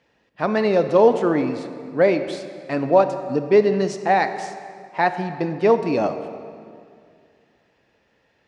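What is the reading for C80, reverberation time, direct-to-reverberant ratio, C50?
11.0 dB, 2.3 s, 9.0 dB, 10.0 dB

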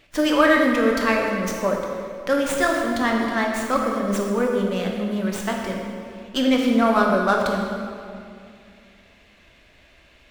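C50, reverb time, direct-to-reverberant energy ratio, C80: 2.0 dB, 2.3 s, 0.0 dB, 3.0 dB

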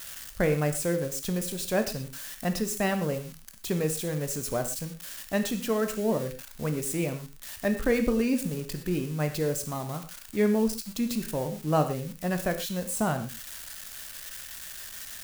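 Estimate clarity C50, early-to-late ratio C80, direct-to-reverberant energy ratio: 10.5 dB, 12.5 dB, 7.0 dB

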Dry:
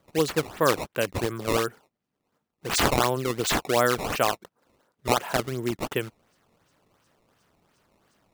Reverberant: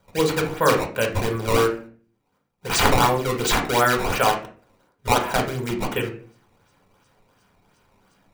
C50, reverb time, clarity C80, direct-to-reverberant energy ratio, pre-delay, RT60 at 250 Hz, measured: 9.0 dB, 0.45 s, 14.5 dB, 2.0 dB, 3 ms, 0.60 s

